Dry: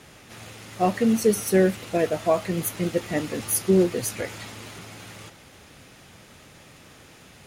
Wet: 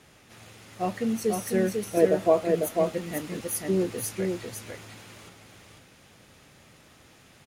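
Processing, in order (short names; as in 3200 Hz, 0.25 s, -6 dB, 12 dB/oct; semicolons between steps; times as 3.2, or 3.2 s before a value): 1.97–2.45 bell 420 Hz +12 dB 1.5 oct; echo 0.497 s -4 dB; gain -7 dB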